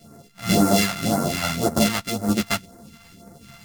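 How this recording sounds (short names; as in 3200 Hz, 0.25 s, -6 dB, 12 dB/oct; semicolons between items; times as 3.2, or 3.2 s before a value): a buzz of ramps at a fixed pitch in blocks of 64 samples; phasing stages 2, 1.9 Hz, lowest notch 360–2900 Hz; random-step tremolo; a shimmering, thickened sound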